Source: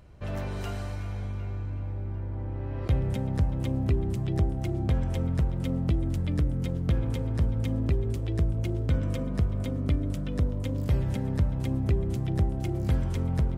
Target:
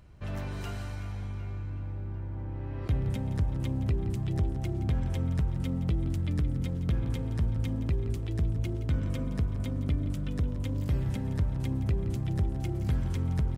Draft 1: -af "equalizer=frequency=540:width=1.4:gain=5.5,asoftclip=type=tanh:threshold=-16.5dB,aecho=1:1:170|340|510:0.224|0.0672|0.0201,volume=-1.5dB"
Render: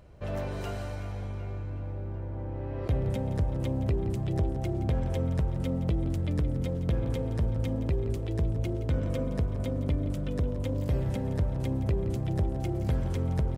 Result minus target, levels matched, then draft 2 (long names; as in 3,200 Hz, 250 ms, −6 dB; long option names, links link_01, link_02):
500 Hz band +6.5 dB
-af "equalizer=frequency=540:width=1.4:gain=-5,asoftclip=type=tanh:threshold=-16.5dB,aecho=1:1:170|340|510:0.224|0.0672|0.0201,volume=-1.5dB"